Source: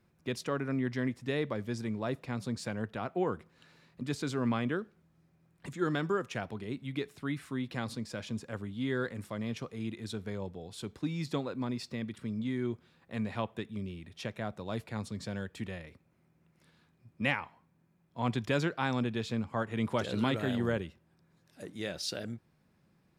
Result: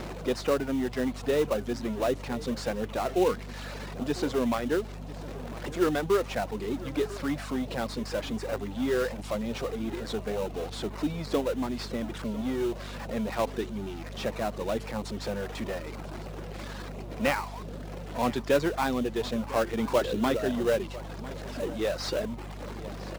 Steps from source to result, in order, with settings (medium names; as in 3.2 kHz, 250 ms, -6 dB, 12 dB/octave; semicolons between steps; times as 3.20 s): jump at every zero crossing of -34 dBFS; high-pass 230 Hz 12 dB/octave; reverb removal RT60 1.1 s; Bessel low-pass 5.5 kHz; peaking EQ 540 Hz +5 dB 1.1 oct; in parallel at -5 dB: sample-rate reducer 3.3 kHz, jitter 20%; on the sum: hum 50 Hz, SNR 11 dB; on a send: delay 1000 ms -18 dB